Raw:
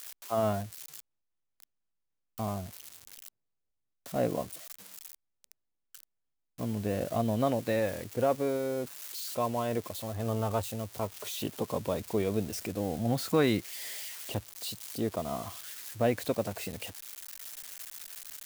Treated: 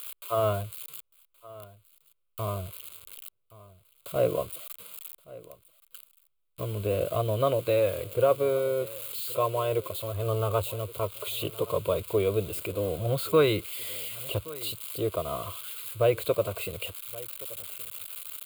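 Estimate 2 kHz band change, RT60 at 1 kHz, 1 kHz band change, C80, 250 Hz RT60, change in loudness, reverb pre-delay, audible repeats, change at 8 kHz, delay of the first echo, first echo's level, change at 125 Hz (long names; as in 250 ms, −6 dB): +2.0 dB, no reverb audible, +2.0 dB, no reverb audible, no reverb audible, +3.5 dB, no reverb audible, 1, +0.5 dB, 1,123 ms, −20.0 dB, +3.5 dB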